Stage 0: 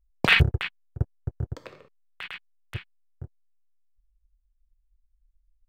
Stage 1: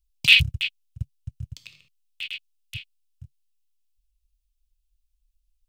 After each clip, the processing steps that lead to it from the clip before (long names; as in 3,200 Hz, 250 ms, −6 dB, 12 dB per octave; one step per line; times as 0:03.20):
drawn EQ curve 140 Hz 0 dB, 450 Hz −26 dB, 1,700 Hz −13 dB, 2,600 Hz +13 dB
level −4.5 dB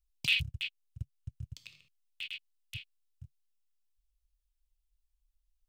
downward compressor 1.5 to 1, threshold −33 dBFS, peak gain reduction 8.5 dB
level −6 dB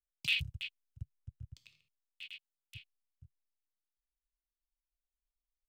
multiband upward and downward expander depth 40%
level −7 dB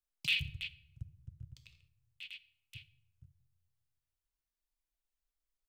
rectangular room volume 3,000 cubic metres, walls furnished, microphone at 0.69 metres